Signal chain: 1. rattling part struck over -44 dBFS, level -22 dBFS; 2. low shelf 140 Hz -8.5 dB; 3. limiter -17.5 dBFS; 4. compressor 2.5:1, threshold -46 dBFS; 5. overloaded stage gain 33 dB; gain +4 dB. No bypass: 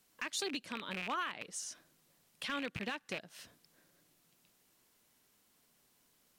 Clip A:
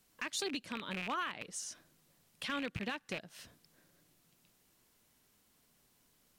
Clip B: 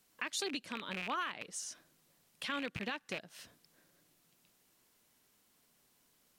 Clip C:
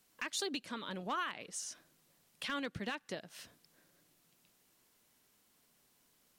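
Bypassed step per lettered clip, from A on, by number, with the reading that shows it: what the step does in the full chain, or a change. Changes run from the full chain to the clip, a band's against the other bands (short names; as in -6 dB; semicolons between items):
2, 125 Hz band +3.0 dB; 5, distortion -23 dB; 1, 2 kHz band -2.0 dB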